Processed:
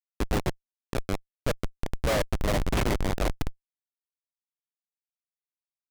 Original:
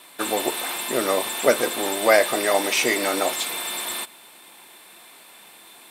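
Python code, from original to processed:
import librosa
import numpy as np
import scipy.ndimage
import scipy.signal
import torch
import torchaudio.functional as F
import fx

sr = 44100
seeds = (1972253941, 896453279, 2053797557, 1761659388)

p1 = fx.echo_thinned(x, sr, ms=147, feedback_pct=50, hz=880.0, wet_db=-14.5)
p2 = fx.rider(p1, sr, range_db=4, speed_s=2.0)
p3 = p1 + (p2 * librosa.db_to_amplitude(3.0))
p4 = fx.spacing_loss(p3, sr, db_at_10k=37, at=(0.97, 1.83))
p5 = fx.schmitt(p4, sr, flips_db=-7.5)
p6 = fx.doppler_dist(p5, sr, depth_ms=0.19)
y = p6 * librosa.db_to_amplitude(-6.5)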